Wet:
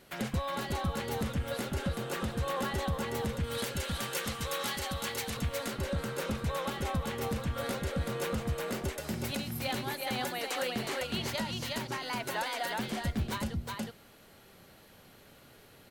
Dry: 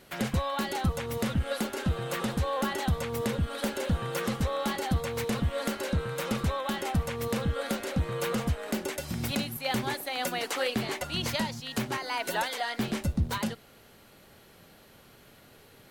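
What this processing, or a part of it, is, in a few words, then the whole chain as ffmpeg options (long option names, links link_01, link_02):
limiter into clipper: -filter_complex "[0:a]asettb=1/sr,asplit=3[link_01][link_02][link_03];[link_01]atrim=end=3.444[link_04];[link_02]atrim=start=3.44:end=5.37,asetpts=PTS-STARTPTS,afade=type=in:duration=0.004:curve=qsin,afade=type=out:start_time=1.926:duration=0.004:curve=qsin,tiltshelf=frequency=1300:gain=-6.5[link_05];[link_03]atrim=start=5.366[link_06];[link_04][link_05]acrossfade=duration=0.004:curve1=hsin:curve2=qsin[link_07];[link_07][link_06]acrossfade=duration=0.004:curve1=qsin:curve2=hsin,aecho=1:1:365:0.668,alimiter=limit=-20dB:level=0:latency=1:release=293,asoftclip=type=hard:threshold=-22dB,volume=-3dB"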